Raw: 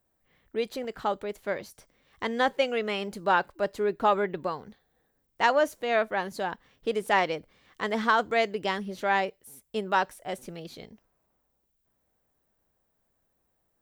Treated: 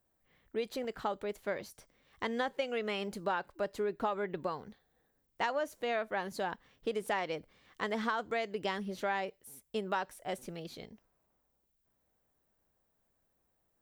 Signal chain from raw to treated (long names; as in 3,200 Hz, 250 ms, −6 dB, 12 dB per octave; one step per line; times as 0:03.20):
downward compressor 6 to 1, threshold −27 dBFS, peak gain reduction 9.5 dB
level −3 dB